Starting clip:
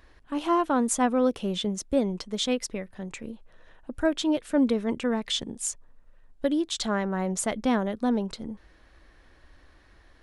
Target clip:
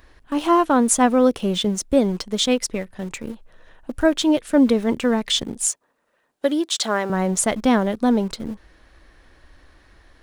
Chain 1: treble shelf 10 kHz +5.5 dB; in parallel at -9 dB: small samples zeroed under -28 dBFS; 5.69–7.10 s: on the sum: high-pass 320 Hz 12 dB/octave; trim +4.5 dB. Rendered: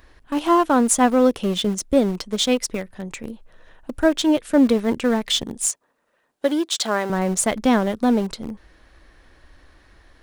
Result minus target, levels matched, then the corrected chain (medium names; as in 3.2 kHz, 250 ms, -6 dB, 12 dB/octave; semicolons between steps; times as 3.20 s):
small samples zeroed: distortion +9 dB
treble shelf 10 kHz +5.5 dB; in parallel at -9 dB: small samples zeroed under -35.5 dBFS; 5.69–7.10 s: on the sum: high-pass 320 Hz 12 dB/octave; trim +4.5 dB